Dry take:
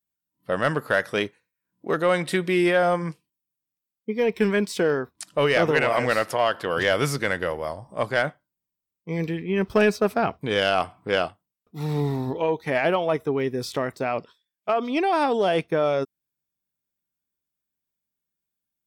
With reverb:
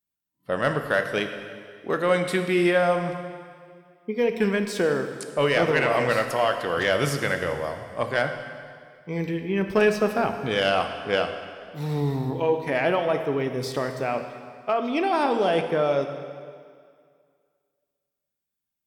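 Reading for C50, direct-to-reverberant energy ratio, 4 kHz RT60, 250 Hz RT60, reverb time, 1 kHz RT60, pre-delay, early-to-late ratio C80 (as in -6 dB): 7.5 dB, 6.0 dB, 1.9 s, 2.0 s, 2.1 s, 2.1 s, 8 ms, 8.5 dB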